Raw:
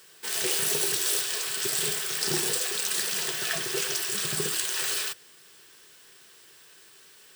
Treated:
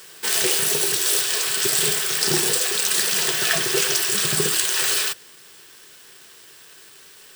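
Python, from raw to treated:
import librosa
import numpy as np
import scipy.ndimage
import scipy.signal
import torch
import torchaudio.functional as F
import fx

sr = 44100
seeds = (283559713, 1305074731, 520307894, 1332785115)

p1 = fx.quant_dither(x, sr, seeds[0], bits=8, dither='none')
p2 = x + F.gain(torch.from_numpy(p1), -7.5).numpy()
p3 = fx.rider(p2, sr, range_db=10, speed_s=0.5)
y = F.gain(torch.from_numpy(p3), 4.5).numpy()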